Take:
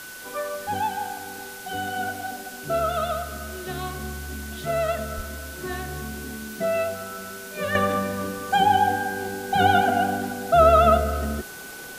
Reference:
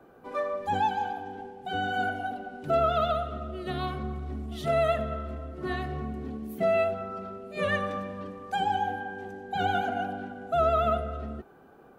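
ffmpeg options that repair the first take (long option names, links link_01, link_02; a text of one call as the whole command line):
ffmpeg -i in.wav -filter_complex "[0:a]bandreject=frequency=1500:width=30,asplit=3[link_01][link_02][link_03];[link_01]afade=type=out:start_time=5.16:duration=0.02[link_04];[link_02]highpass=frequency=140:width=0.5412,highpass=frequency=140:width=1.3066,afade=type=in:start_time=5.16:duration=0.02,afade=type=out:start_time=5.28:duration=0.02[link_05];[link_03]afade=type=in:start_time=5.28:duration=0.02[link_06];[link_04][link_05][link_06]amix=inputs=3:normalize=0,afwtdn=0.0089,asetnsamples=nb_out_samples=441:pad=0,asendcmd='7.75 volume volume -9dB',volume=0dB" out.wav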